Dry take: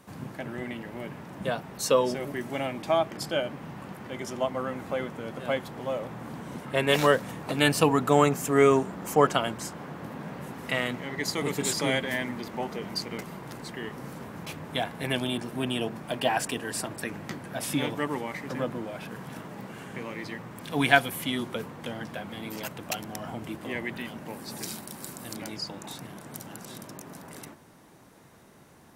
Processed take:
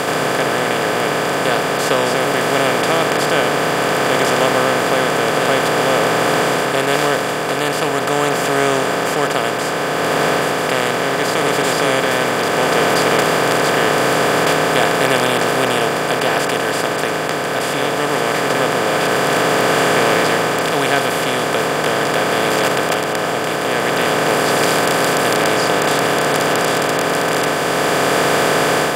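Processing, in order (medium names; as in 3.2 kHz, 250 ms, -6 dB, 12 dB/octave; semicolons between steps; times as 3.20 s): spectral levelling over time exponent 0.2; level rider; trim -1 dB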